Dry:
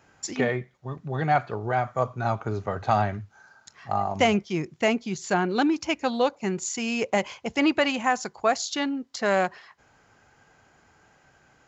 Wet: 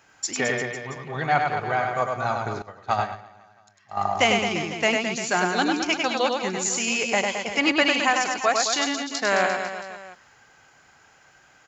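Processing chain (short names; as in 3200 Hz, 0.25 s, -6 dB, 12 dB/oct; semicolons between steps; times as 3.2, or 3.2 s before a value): tilt shelf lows -5.5 dB, about 750 Hz; reverse bouncing-ball echo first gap 0.1 s, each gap 1.15×, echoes 5; 2.62–3.97 upward expander 2.5:1, over -29 dBFS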